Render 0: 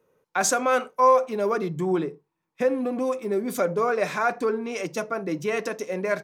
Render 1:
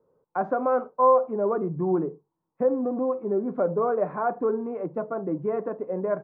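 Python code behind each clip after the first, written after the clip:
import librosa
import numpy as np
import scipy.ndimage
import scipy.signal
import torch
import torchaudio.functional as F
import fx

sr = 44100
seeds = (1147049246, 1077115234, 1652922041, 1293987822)

y = scipy.signal.sosfilt(scipy.signal.butter(4, 1100.0, 'lowpass', fs=sr, output='sos'), x)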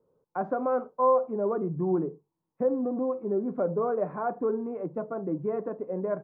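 y = fx.low_shelf(x, sr, hz=500.0, db=5.5)
y = F.gain(torch.from_numpy(y), -6.0).numpy()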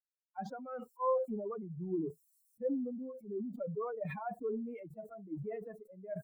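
y = fx.bin_expand(x, sr, power=3.0)
y = fx.sustainer(y, sr, db_per_s=38.0)
y = F.gain(torch.from_numpy(y), -7.0).numpy()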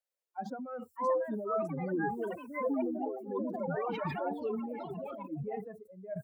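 y = fx.echo_pitch(x, sr, ms=681, semitones=4, count=3, db_per_echo=-3.0)
y = fx.filter_sweep_highpass(y, sr, from_hz=540.0, to_hz=81.0, start_s=0.21, end_s=0.9, q=4.6)
y = F.gain(torch.from_numpy(y), 1.0).numpy()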